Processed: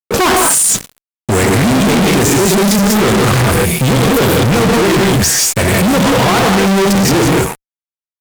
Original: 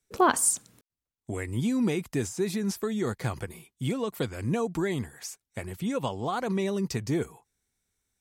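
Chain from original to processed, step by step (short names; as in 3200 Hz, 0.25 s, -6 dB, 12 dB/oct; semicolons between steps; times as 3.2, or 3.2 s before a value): non-linear reverb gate 0.21 s rising, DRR -1 dB; fuzz box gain 49 dB, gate -50 dBFS; gain +3.5 dB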